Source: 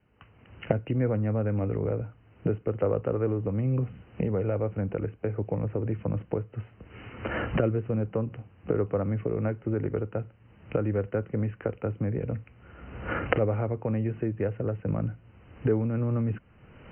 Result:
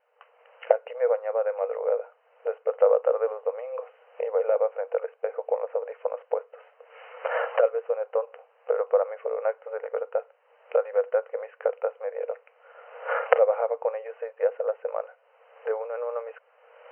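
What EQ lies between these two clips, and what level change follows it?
dynamic EQ 970 Hz, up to +3 dB, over -41 dBFS, Q 1.1; brick-wall FIR high-pass 450 Hz; tilt shelf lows +7 dB, about 1300 Hz; +2.5 dB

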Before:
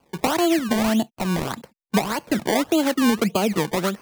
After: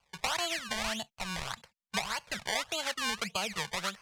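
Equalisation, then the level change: air absorption 58 m; passive tone stack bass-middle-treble 10-0-10; 0.0 dB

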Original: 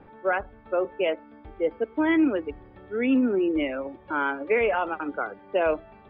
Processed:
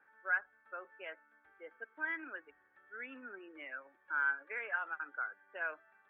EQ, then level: band-pass 1600 Hz, Q 7.4; 0.0 dB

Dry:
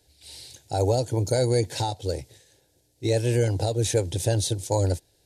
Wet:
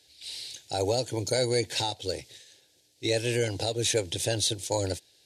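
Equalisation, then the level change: weighting filter D; dynamic EQ 4900 Hz, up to -4 dB, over -34 dBFS, Q 0.72; -3.0 dB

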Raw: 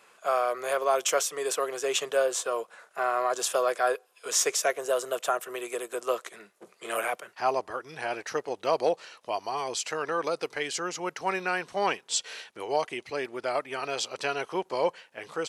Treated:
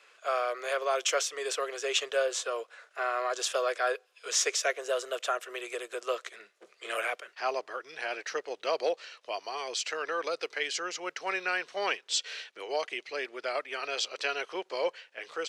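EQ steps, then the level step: HPF 210 Hz 6 dB/oct; three-band isolator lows -19 dB, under 400 Hz, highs -17 dB, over 6500 Hz; bell 890 Hz -10 dB 0.97 oct; +2.5 dB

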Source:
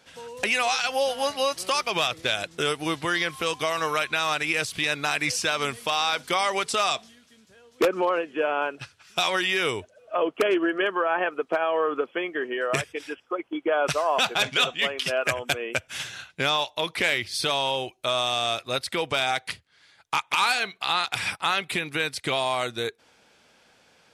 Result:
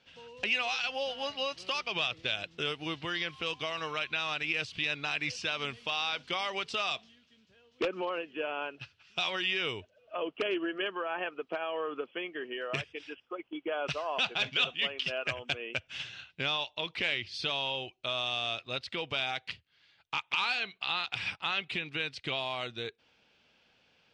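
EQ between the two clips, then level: ladder low-pass 6100 Hz, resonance 25%; low shelf 260 Hz +6.5 dB; bell 2800 Hz +8.5 dB 0.48 oct; -6.0 dB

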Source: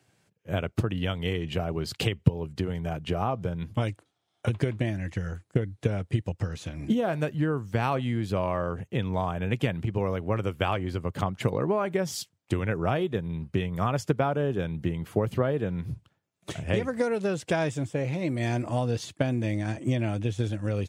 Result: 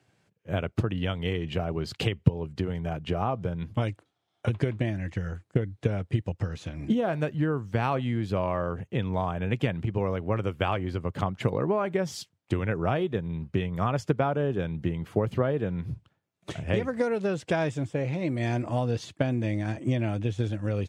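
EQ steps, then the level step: high shelf 7500 Hz -11.5 dB; 0.0 dB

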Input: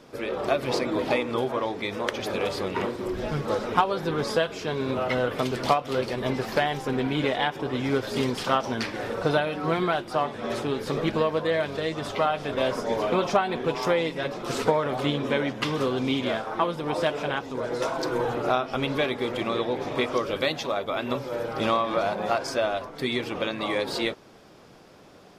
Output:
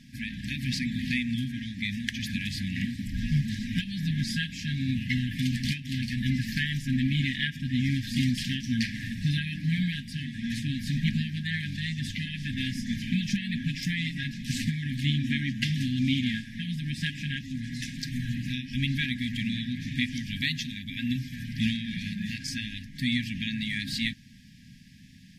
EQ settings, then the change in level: brick-wall FIR band-stop 270–1600 Hz; low shelf 470 Hz +6.5 dB; 0.0 dB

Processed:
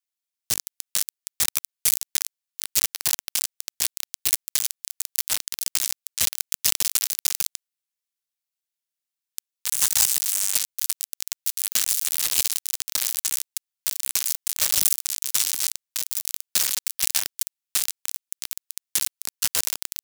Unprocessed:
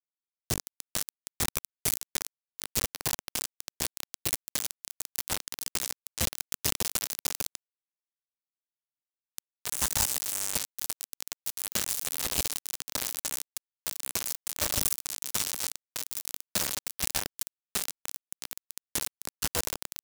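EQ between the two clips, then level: tilt shelf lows -8.5 dB, about 1200 Hz; 0.0 dB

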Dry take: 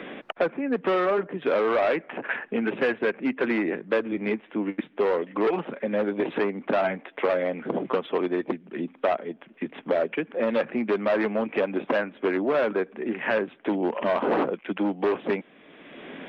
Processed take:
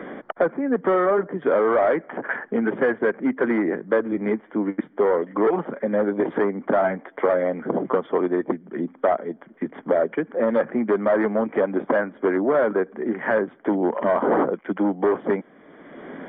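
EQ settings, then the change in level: polynomial smoothing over 41 samples; +4.0 dB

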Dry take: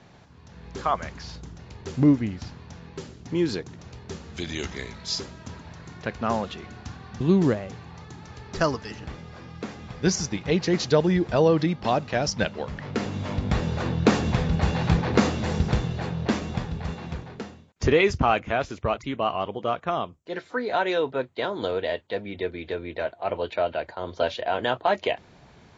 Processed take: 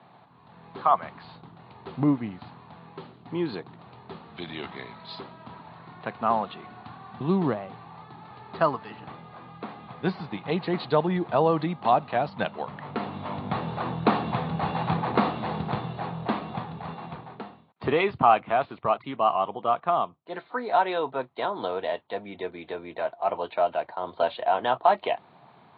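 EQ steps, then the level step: HPF 120 Hz 24 dB/oct; steep low-pass 4300 Hz 96 dB/oct; band shelf 920 Hz +9 dB 1.1 oct; -4.5 dB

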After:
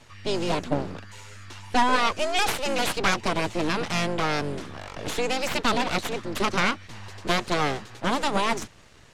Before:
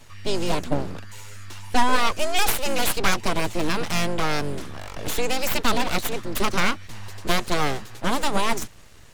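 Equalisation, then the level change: air absorption 51 m; low shelf 63 Hz -10 dB; 0.0 dB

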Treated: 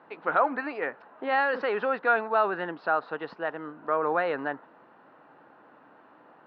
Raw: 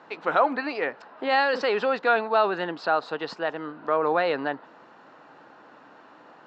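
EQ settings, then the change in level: Bessel low-pass 2700 Hz, order 2; dynamic EQ 1500 Hz, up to +5 dB, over -38 dBFS, Q 1.4; air absorption 150 m; -3.5 dB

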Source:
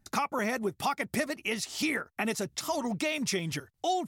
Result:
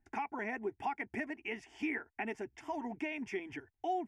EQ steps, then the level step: LPF 2700 Hz 12 dB/oct; fixed phaser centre 820 Hz, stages 8; -4.5 dB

